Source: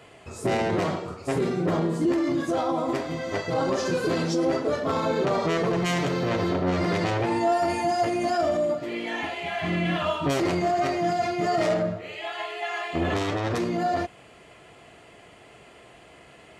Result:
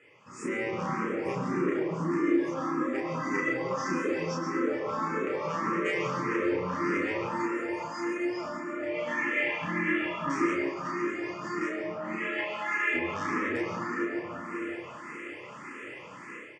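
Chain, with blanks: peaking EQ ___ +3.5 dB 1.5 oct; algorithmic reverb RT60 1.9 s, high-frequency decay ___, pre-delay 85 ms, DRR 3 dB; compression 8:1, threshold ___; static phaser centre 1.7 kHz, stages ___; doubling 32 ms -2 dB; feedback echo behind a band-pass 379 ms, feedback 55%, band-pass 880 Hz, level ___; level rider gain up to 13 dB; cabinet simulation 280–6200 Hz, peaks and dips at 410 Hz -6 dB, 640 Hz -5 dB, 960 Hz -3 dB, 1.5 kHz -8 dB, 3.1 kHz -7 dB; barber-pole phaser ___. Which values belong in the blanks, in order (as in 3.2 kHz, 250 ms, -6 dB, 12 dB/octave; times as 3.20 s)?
780 Hz, 0.35×, -30 dBFS, 4, -4.5 dB, +1.7 Hz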